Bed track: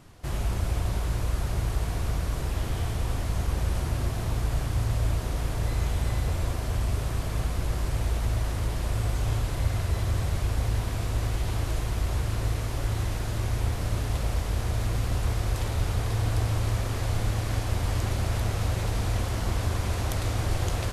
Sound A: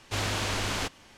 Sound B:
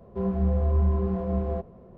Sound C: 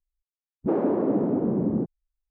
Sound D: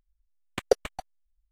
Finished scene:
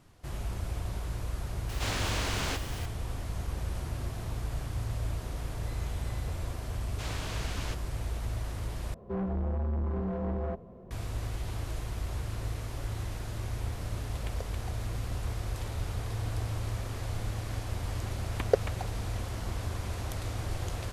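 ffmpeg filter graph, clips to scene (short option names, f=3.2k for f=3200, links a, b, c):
-filter_complex "[1:a]asplit=2[a][b];[4:a]asplit=2[c][d];[0:a]volume=-7.5dB[e];[a]aeval=exprs='val(0)+0.5*0.0168*sgn(val(0))':c=same[f];[2:a]asoftclip=type=tanh:threshold=-28dB[g];[c]acompressor=threshold=-28dB:ratio=6:attack=3.2:release=140:knee=1:detection=peak[h];[d]acrossover=split=3100[i][j];[j]acompressor=threshold=-46dB:ratio=4:attack=1:release=60[k];[i][k]amix=inputs=2:normalize=0[l];[e]asplit=2[m][n];[m]atrim=end=8.944[o];[g]atrim=end=1.97,asetpts=PTS-STARTPTS,volume=-0.5dB[p];[n]atrim=start=10.906[q];[f]atrim=end=1.17,asetpts=PTS-STARTPTS,volume=-4.5dB,afade=t=in:d=0.004:c=hsin,afade=t=out:st=1.166:d=0.004:c=hsin,adelay=1690[r];[b]atrim=end=1.17,asetpts=PTS-STARTPTS,volume=-10dB,afade=t=in:d=0.004:c=hsin,afade=t=out:st=1.166:d=0.004:c=hsin,adelay=6870[s];[h]atrim=end=1.51,asetpts=PTS-STARTPTS,volume=-10dB,afade=t=in:d=0.004:c=hsin,afade=t=out:st=1.506:d=0.004:c=hsin,adelay=13690[t];[l]atrim=end=1.51,asetpts=PTS-STARTPTS,volume=-2.5dB,afade=t=in:d=0.004:c=hsin,afade=t=out:st=1.506:d=0.004:c=hsin,adelay=17820[u];[o][p]acrossfade=d=0.004:c1=hsin:c2=hsin[v];[v][q]acrossfade=d=0.004:c1=hsin:c2=hsin[w];[w][r][s][t][u]amix=inputs=5:normalize=0"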